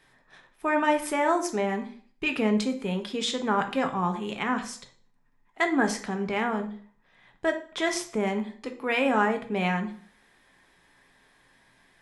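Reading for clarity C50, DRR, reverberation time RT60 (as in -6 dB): 11.5 dB, 5.0 dB, 0.45 s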